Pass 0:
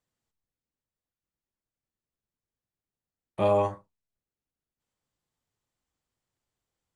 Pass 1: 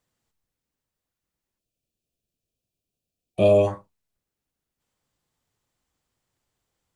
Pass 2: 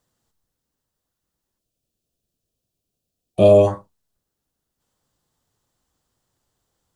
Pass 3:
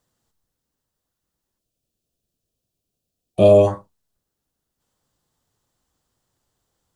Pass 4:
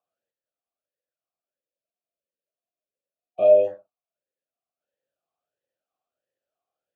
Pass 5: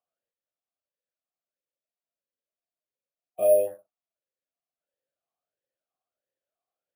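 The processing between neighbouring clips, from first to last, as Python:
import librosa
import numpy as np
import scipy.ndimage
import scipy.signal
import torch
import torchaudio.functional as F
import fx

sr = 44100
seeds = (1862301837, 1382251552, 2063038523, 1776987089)

y1 = fx.spec_box(x, sr, start_s=1.59, length_s=2.09, low_hz=740.0, high_hz=2300.0, gain_db=-16)
y1 = F.gain(torch.from_numpy(y1), 7.0).numpy()
y2 = fx.peak_eq(y1, sr, hz=2300.0, db=-7.5, octaves=0.61)
y2 = F.gain(torch.from_numpy(y2), 5.5).numpy()
y3 = y2
y4 = fx.vowel_sweep(y3, sr, vowels='a-e', hz=1.5)
y5 = np.repeat(scipy.signal.resample_poly(y4, 1, 4), 4)[:len(y4)]
y5 = F.gain(torch.from_numpy(y5), -4.5).numpy()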